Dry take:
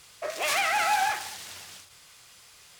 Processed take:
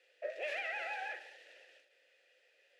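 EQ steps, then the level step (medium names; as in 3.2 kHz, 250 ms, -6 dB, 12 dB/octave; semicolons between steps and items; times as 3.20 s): vowel filter e; elliptic high-pass 300 Hz, stop band 40 dB; treble shelf 4 kHz -5.5 dB; +1.5 dB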